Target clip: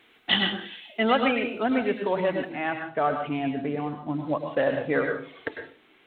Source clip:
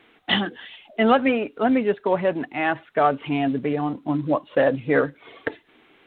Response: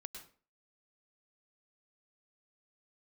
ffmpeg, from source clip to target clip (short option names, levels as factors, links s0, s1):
-filter_complex "[0:a]asetnsamples=n=441:p=0,asendcmd='2.49 highshelf g -2;4.17 highshelf g 4.5',highshelf=f=2900:g=11[s0];[1:a]atrim=start_sample=2205[s1];[s0][s1]afir=irnorm=-1:irlink=0"